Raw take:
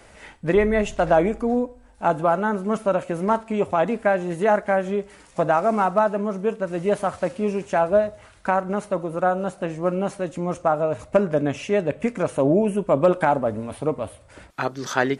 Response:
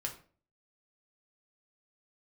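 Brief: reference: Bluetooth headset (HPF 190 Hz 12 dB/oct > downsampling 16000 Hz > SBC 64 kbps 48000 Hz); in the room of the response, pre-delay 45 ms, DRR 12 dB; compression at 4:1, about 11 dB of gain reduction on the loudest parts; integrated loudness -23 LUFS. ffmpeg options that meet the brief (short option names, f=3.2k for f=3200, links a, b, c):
-filter_complex "[0:a]acompressor=threshold=-26dB:ratio=4,asplit=2[a][b];[1:a]atrim=start_sample=2205,adelay=45[c];[b][c]afir=irnorm=-1:irlink=0,volume=-12.5dB[d];[a][d]amix=inputs=2:normalize=0,highpass=190,aresample=16000,aresample=44100,volume=7.5dB" -ar 48000 -c:a sbc -b:a 64k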